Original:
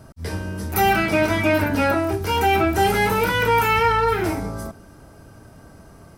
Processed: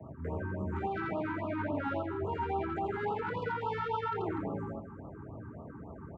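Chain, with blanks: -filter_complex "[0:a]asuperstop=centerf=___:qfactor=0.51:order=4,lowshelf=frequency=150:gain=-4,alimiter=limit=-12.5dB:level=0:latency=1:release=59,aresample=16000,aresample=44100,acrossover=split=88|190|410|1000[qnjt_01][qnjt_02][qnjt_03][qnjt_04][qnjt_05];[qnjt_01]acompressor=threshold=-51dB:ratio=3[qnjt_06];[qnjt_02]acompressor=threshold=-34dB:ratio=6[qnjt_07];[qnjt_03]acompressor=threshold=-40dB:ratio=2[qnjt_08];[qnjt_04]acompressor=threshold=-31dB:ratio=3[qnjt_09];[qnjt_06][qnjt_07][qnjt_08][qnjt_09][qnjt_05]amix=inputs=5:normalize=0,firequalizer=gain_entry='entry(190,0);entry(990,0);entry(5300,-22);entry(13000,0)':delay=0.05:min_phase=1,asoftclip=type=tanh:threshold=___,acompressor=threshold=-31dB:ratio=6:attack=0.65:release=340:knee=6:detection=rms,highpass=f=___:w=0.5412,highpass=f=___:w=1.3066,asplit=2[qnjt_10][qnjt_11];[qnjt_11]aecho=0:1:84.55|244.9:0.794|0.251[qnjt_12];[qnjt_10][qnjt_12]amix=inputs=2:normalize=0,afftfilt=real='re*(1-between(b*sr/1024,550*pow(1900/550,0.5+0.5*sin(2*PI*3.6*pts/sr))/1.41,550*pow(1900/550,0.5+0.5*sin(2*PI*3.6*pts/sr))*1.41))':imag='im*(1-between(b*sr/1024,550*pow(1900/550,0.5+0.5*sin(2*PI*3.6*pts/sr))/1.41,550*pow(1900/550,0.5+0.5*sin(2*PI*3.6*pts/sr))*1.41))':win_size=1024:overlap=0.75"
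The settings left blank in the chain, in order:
4200, -20dB, 61, 61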